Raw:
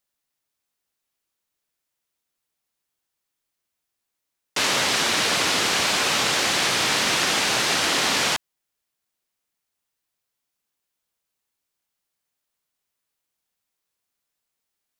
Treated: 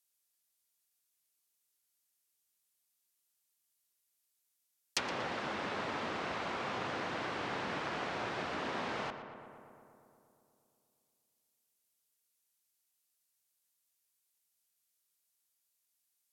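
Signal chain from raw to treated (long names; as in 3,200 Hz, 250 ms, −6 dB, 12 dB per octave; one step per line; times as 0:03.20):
first-order pre-emphasis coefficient 0.8
treble cut that deepens with the level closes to 1,200 Hz, closed at −27 dBFS
feedback echo with a low-pass in the loop 109 ms, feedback 77%, low-pass 3,300 Hz, level −10 dB
wrong playback speed 48 kHz file played as 44.1 kHz
level +1.5 dB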